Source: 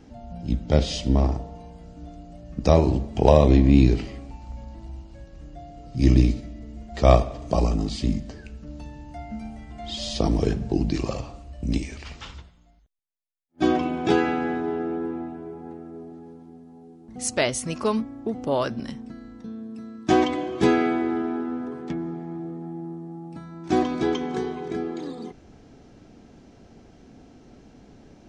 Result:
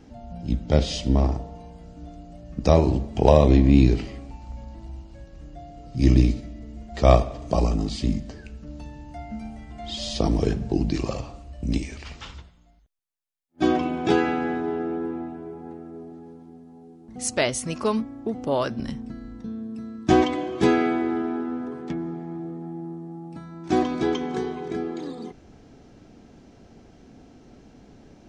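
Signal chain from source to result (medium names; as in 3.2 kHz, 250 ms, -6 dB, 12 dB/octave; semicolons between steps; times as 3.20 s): 18.79–20.22 s: bass shelf 130 Hz +11 dB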